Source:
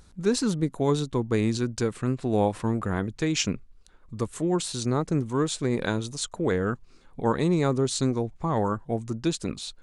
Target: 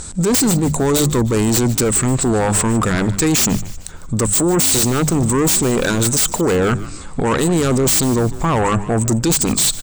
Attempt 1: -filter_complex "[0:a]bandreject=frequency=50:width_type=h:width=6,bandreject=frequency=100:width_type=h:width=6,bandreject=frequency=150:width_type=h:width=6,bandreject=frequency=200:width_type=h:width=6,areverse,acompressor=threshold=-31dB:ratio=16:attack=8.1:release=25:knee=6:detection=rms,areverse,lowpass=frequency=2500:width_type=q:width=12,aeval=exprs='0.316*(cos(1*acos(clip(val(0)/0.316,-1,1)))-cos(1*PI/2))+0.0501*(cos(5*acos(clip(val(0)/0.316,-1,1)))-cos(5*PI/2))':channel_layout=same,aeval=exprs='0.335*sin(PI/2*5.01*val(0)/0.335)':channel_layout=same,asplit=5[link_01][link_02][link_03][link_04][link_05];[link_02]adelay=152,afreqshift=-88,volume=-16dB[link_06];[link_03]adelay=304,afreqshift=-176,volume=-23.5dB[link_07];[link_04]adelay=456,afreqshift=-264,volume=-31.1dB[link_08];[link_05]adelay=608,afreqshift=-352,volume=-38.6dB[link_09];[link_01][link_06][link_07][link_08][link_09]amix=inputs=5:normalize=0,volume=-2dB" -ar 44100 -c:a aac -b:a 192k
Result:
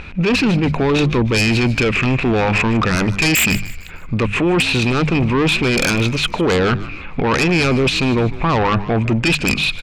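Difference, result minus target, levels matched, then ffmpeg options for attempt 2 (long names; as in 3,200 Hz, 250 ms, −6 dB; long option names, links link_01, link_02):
8,000 Hz band −11.5 dB
-filter_complex "[0:a]bandreject=frequency=50:width_type=h:width=6,bandreject=frequency=100:width_type=h:width=6,bandreject=frequency=150:width_type=h:width=6,bandreject=frequency=200:width_type=h:width=6,areverse,acompressor=threshold=-31dB:ratio=16:attack=8.1:release=25:knee=6:detection=rms,areverse,lowpass=frequency=8000:width_type=q:width=12,aeval=exprs='0.316*(cos(1*acos(clip(val(0)/0.316,-1,1)))-cos(1*PI/2))+0.0501*(cos(5*acos(clip(val(0)/0.316,-1,1)))-cos(5*PI/2))':channel_layout=same,aeval=exprs='0.335*sin(PI/2*5.01*val(0)/0.335)':channel_layout=same,asplit=5[link_01][link_02][link_03][link_04][link_05];[link_02]adelay=152,afreqshift=-88,volume=-16dB[link_06];[link_03]adelay=304,afreqshift=-176,volume=-23.5dB[link_07];[link_04]adelay=456,afreqshift=-264,volume=-31.1dB[link_08];[link_05]adelay=608,afreqshift=-352,volume=-38.6dB[link_09];[link_01][link_06][link_07][link_08][link_09]amix=inputs=5:normalize=0,volume=-2dB" -ar 44100 -c:a aac -b:a 192k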